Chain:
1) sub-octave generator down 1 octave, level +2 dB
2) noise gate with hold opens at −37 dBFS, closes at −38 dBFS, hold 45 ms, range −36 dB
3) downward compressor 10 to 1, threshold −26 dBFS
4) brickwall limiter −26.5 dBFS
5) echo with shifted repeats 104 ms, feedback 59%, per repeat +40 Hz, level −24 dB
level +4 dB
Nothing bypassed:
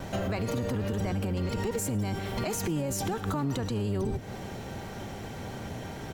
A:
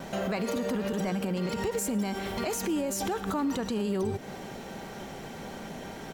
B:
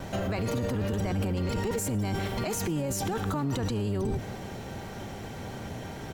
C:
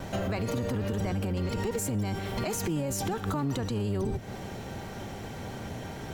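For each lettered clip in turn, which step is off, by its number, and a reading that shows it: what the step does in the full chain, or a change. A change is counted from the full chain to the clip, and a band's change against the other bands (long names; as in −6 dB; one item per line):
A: 1, 125 Hz band −8.5 dB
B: 3, average gain reduction 7.0 dB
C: 5, echo-to-direct ratio −22.0 dB to none audible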